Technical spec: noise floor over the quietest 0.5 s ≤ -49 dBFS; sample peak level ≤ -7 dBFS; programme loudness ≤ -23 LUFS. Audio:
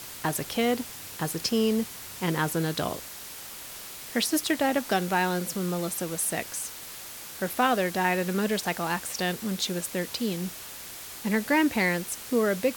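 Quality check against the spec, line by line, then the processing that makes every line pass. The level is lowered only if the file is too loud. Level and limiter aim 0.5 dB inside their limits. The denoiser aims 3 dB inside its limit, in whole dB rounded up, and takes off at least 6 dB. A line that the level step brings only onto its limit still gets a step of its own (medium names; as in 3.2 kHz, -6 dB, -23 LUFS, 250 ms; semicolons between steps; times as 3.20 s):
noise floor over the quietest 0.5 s -41 dBFS: fail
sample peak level -9.5 dBFS: pass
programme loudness -27.5 LUFS: pass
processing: noise reduction 11 dB, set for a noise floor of -41 dBFS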